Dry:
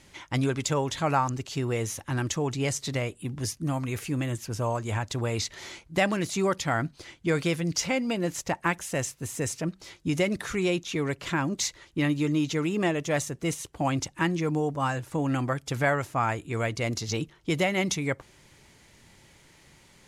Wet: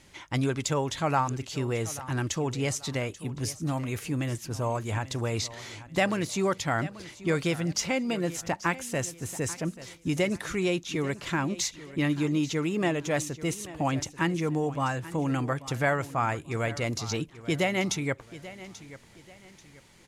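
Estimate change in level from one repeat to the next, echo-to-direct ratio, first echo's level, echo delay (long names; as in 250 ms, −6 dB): −9.5 dB, −16.0 dB, −16.5 dB, 836 ms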